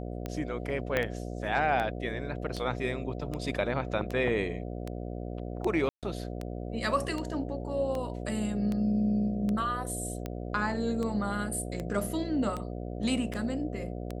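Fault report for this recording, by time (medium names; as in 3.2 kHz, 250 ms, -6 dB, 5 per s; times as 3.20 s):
buzz 60 Hz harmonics 12 -37 dBFS
tick 78 rpm -21 dBFS
0.97 s: pop -14 dBFS
5.89–6.03 s: dropout 137 ms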